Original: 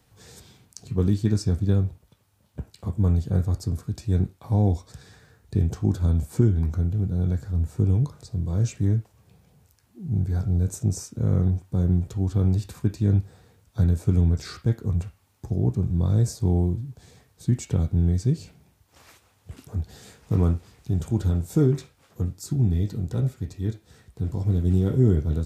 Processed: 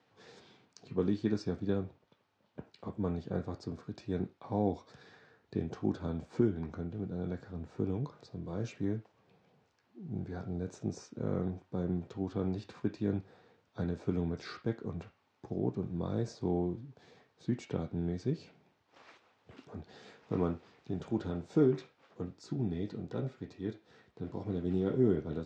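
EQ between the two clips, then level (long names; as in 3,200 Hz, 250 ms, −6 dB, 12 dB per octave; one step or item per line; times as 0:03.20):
band-pass filter 270–7,300 Hz
high-frequency loss of the air 180 metres
−2.0 dB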